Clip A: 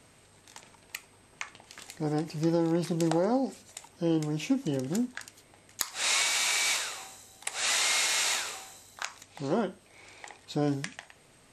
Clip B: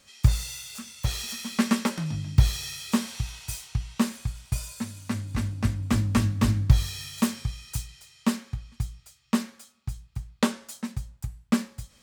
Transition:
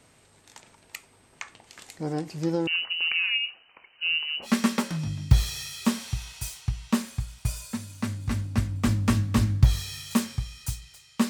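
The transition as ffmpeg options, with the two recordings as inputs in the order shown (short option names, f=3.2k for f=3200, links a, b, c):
-filter_complex "[0:a]asettb=1/sr,asplit=3[a][b][c];[a]atrim=end=2.674[d];[b]atrim=start=2.67:end=4.5,asetpts=PTS-STARTPTS,afade=t=in:d=0.004:c=qsin,afade=t=out:st=1.826:d=0.004:c=qsin,lowpass=f=2.6k:t=q:w=0.5098,lowpass=f=2.6k:t=q:w=0.6013,lowpass=f=2.6k:t=q:w=0.9,lowpass=f=2.6k:t=q:w=2.563,afreqshift=-3100[e];[c]atrim=start=4.496[f];[d][e]acrossfade=d=0.004:c1=hsin:c2=qsin[g];[g][f]acrossfade=d=0.004:c1=qsin:c2=hsin,apad=whole_dur=11.29,atrim=end=11.29,atrim=end=4.5,asetpts=PTS-STARTPTS[h];[1:a]atrim=start=1.49:end=8.36,asetpts=PTS-STARTPTS[i];[h][i]acrossfade=d=0.08:c1=tri:c2=tri"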